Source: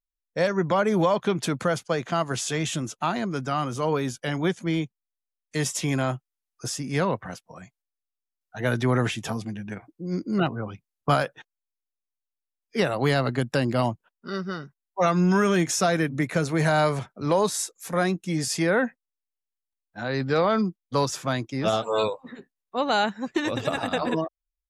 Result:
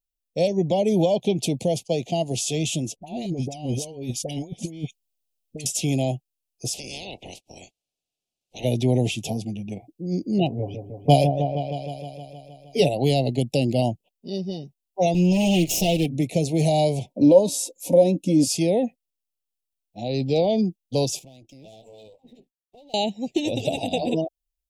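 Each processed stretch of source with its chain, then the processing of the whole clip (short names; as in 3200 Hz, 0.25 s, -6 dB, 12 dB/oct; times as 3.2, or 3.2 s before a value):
2.96–5.66 negative-ratio compressor -31 dBFS, ratio -0.5 + dispersion highs, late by 65 ms, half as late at 1200 Hz
6.73–8.63 spectral limiter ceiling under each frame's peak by 30 dB + compressor 5:1, threshold -32 dBFS + air absorption 60 m
10.58–12.89 comb 7 ms, depth 88% + repeats that get brighter 0.156 s, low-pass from 750 Hz, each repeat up 1 oct, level -6 dB
15.14–16.06 minimum comb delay 6.1 ms + bell 2800 Hz +9.5 dB 0.24 oct
17.1–18.47 compressor 2.5:1, threshold -27 dBFS + small resonant body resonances 280/540/930 Hz, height 18 dB, ringing for 50 ms
21.19–22.94 half-wave gain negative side -7 dB + compressor 4:1, threshold -39 dBFS + tube stage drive 41 dB, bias 0.7
whole clip: elliptic band-stop 740–2600 Hz, stop band 80 dB; high shelf 11000 Hz +4 dB; gain +3 dB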